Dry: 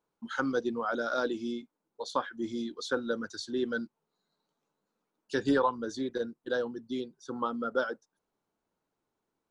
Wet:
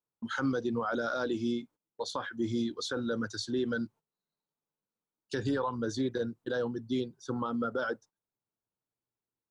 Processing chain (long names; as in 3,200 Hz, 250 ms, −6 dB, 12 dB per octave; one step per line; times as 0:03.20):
brickwall limiter −26 dBFS, peak gain reduction 10.5 dB
parametric band 110 Hz +13.5 dB 0.64 octaves
noise gate −55 dBFS, range −17 dB
level +2.5 dB